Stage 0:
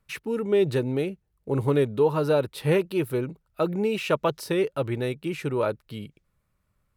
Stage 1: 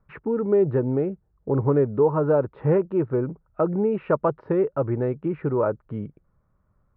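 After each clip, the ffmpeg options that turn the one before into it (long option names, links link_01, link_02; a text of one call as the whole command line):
ffmpeg -i in.wav -filter_complex "[0:a]lowpass=frequency=1400:width=0.5412,lowpass=frequency=1400:width=1.3066,asplit=2[link_01][link_02];[link_02]acompressor=threshold=-31dB:ratio=6,volume=0.5dB[link_03];[link_01][link_03]amix=inputs=2:normalize=0" out.wav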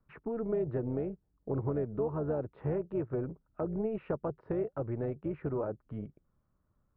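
ffmpeg -i in.wav -filter_complex "[0:a]acrossover=split=530|1500[link_01][link_02][link_03];[link_01]acompressor=threshold=-21dB:ratio=4[link_04];[link_02]acompressor=threshold=-35dB:ratio=4[link_05];[link_03]acompressor=threshold=-48dB:ratio=4[link_06];[link_04][link_05][link_06]amix=inputs=3:normalize=0,tremolo=f=230:d=0.519,volume=-6.5dB" out.wav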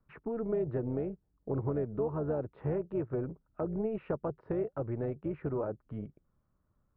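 ffmpeg -i in.wav -af anull out.wav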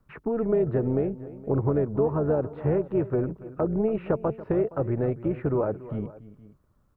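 ffmpeg -i in.wav -af "aecho=1:1:285|467:0.15|0.106,volume=8.5dB" out.wav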